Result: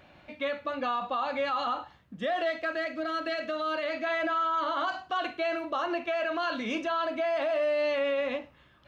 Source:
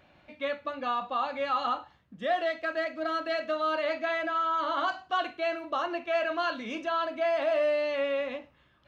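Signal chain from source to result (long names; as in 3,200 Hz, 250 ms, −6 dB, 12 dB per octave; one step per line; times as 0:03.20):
brickwall limiter −26.5 dBFS, peak gain reduction 9.5 dB
0:02.73–0:04.04: parametric band 850 Hz −5.5 dB 0.84 octaves
level +4.5 dB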